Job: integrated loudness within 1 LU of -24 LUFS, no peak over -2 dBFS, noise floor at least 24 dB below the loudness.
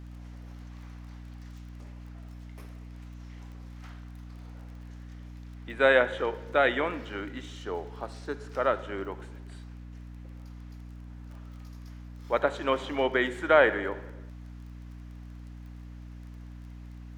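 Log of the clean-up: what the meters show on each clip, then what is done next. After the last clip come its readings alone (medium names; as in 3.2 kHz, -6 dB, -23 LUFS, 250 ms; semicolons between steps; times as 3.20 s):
tick rate 20 per s; hum 60 Hz; highest harmonic 300 Hz; hum level -41 dBFS; loudness -27.5 LUFS; peak level -7.0 dBFS; loudness target -24.0 LUFS
-> de-click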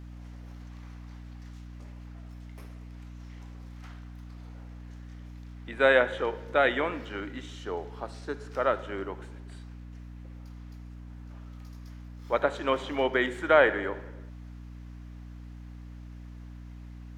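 tick rate 0.058 per s; hum 60 Hz; highest harmonic 300 Hz; hum level -41 dBFS
-> de-hum 60 Hz, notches 5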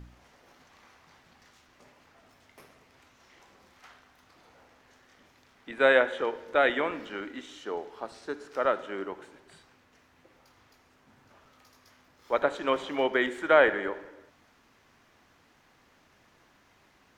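hum not found; loudness -27.5 LUFS; peak level -7.0 dBFS; loudness target -24.0 LUFS
-> trim +3.5 dB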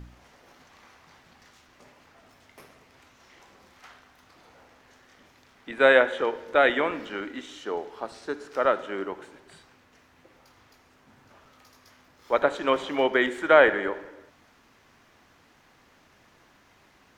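loudness -24.0 LUFS; peak level -3.5 dBFS; noise floor -60 dBFS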